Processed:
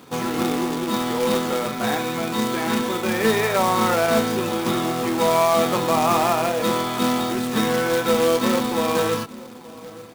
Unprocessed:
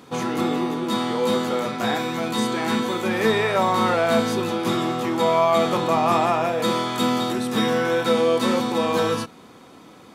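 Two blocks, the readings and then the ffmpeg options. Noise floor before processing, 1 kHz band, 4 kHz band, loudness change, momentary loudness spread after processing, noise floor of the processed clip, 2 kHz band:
-47 dBFS, +0.5 dB, +0.5 dB, +0.5 dB, 6 LU, -40 dBFS, +1.0 dB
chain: -filter_complex "[0:a]asplit=2[s0][s1];[s1]adelay=875,lowpass=f=910:p=1,volume=0.126,asplit=2[s2][s3];[s3]adelay=875,lowpass=f=910:p=1,volume=0.4,asplit=2[s4][s5];[s5]adelay=875,lowpass=f=910:p=1,volume=0.4[s6];[s0][s2][s4][s6]amix=inputs=4:normalize=0,acrossover=split=3600[s7][s8];[s8]acompressor=threshold=0.0112:ratio=4:attack=1:release=60[s9];[s7][s9]amix=inputs=2:normalize=0,acrusher=bits=2:mode=log:mix=0:aa=0.000001"

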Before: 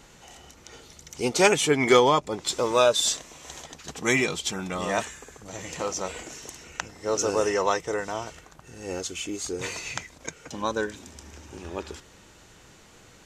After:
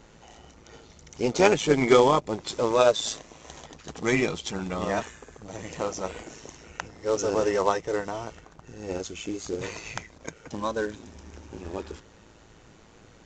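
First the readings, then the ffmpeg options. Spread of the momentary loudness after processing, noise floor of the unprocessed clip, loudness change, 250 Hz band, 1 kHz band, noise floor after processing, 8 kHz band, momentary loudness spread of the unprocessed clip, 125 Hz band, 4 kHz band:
22 LU, -53 dBFS, -0.5 dB, +1.0 dB, -1.0 dB, -54 dBFS, -7.0 dB, 21 LU, +1.5 dB, -5.0 dB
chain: -af "tiltshelf=f=1500:g=4,aresample=16000,acrusher=bits=5:mode=log:mix=0:aa=0.000001,aresample=44100,tremolo=f=110:d=0.571"

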